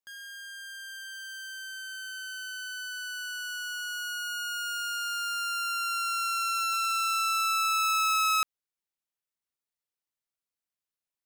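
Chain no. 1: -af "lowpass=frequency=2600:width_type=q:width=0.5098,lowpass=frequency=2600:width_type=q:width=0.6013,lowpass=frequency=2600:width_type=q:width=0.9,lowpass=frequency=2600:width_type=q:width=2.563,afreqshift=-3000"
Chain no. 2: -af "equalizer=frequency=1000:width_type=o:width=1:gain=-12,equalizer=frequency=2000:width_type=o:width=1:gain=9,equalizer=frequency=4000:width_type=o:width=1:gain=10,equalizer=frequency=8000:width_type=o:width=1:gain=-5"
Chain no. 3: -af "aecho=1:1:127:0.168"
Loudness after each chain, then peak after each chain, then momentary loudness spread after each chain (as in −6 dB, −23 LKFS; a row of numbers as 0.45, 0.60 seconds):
−30.5, −25.0, −29.0 LKFS; −21.0, −13.0, −19.5 dBFS; 16, 15, 15 LU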